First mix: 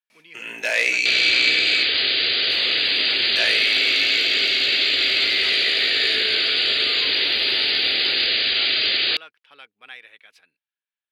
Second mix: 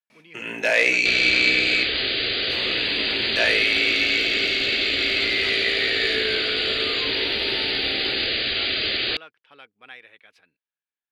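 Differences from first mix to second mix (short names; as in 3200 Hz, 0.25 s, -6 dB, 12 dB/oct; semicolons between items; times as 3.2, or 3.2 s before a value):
first sound +4.0 dB; master: add tilt -2.5 dB/oct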